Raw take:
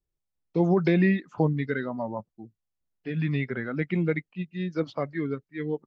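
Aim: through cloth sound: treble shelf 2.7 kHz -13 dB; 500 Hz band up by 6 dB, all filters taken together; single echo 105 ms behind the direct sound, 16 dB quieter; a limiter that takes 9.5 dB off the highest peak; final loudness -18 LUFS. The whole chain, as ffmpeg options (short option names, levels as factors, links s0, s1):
-af "equalizer=f=500:t=o:g=8,alimiter=limit=0.158:level=0:latency=1,highshelf=f=2700:g=-13,aecho=1:1:105:0.158,volume=3.16"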